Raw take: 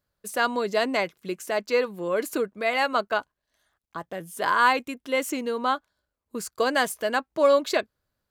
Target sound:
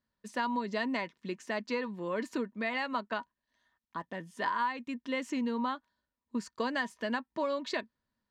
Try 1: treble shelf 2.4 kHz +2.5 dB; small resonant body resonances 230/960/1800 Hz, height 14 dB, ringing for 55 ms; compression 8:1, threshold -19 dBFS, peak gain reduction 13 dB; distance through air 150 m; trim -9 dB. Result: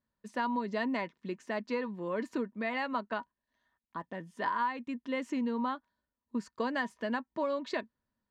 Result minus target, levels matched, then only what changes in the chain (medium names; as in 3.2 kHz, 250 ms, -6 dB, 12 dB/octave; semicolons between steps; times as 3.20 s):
4 kHz band -4.0 dB
change: treble shelf 2.4 kHz +10.5 dB